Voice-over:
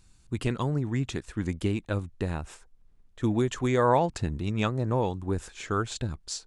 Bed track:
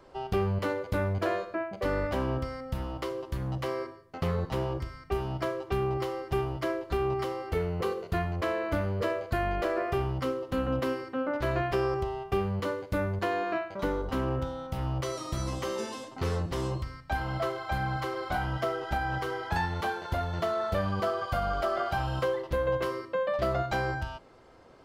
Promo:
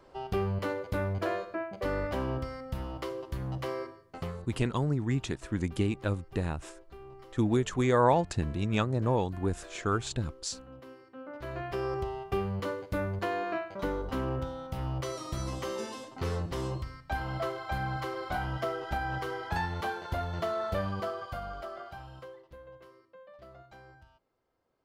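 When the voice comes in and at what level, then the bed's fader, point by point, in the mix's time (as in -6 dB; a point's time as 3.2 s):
4.15 s, -1.0 dB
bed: 4.14 s -2.5 dB
4.58 s -20 dB
10.83 s -20 dB
11.99 s -2.5 dB
20.79 s -2.5 dB
22.77 s -23.5 dB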